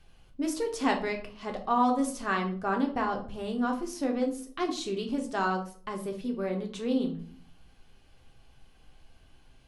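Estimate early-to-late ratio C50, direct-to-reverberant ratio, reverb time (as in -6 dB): 9.5 dB, 2.0 dB, 0.50 s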